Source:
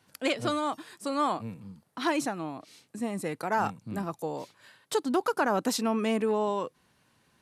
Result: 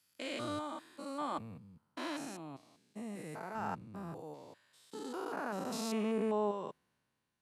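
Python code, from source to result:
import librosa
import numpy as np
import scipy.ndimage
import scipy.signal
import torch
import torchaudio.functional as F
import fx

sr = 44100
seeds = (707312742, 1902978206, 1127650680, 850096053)

y = fx.spec_steps(x, sr, hold_ms=200)
y = fx.band_widen(y, sr, depth_pct=40)
y = y * 10.0 ** (-6.5 / 20.0)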